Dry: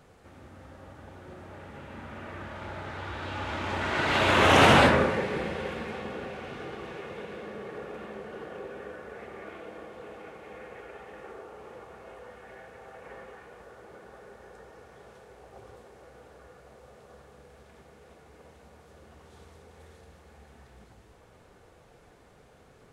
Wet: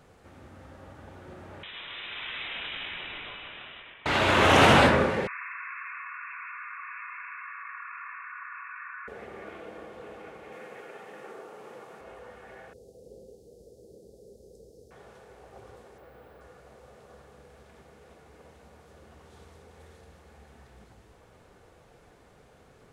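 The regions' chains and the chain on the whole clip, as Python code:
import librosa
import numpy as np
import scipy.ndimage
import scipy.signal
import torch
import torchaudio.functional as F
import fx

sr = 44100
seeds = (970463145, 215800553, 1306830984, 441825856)

y = fx.chain(x, sr, fx.tilt_eq(slope=3.5),
    fx.over_compress(threshold_db=-41.0, ratio=-1.0),
    fx.freq_invert(carrier_hz=3800), at=(1.63, 4.06))
y = fx.chain(y, sr, fx.brickwall_bandpass(low_hz=970.0, high_hz=2700.0),
    fx.env_flatten(amount_pct=70), at=(5.27, 9.08))
y = fx.chain(y, sr, fx.highpass(hz=130.0, slope=24),
    fx.high_shelf(hz=4600.0, db=5.5), at=(10.52, 12.01))
y = fx.chain(y, sr, fx.ellip_bandstop(low_hz=490.0, high_hz=4700.0, order=3, stop_db=60),
    fx.high_shelf(hz=9700.0, db=5.5), at=(12.73, 14.91))
y = fx.chain(y, sr, fx.resample_bad(factor=2, down='none', up='hold'),
    fx.peak_eq(hz=6600.0, db=-11.0, octaves=0.92), at=(15.98, 16.41))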